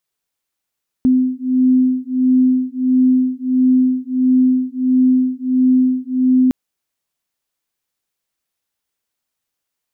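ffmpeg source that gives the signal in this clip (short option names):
-f lavfi -i "aevalsrc='0.188*(sin(2*PI*255*t)+sin(2*PI*256.5*t))':d=5.46:s=44100"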